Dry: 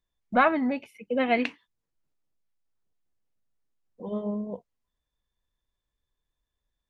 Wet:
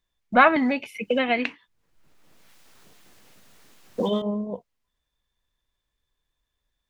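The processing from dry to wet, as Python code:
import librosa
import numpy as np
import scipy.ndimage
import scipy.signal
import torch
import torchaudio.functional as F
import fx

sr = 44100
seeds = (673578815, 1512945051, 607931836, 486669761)

y = fx.peak_eq(x, sr, hz=2600.0, db=4.5, octaves=2.6)
y = fx.band_squash(y, sr, depth_pct=100, at=(0.56, 4.22))
y = y * 10.0 ** (3.0 / 20.0)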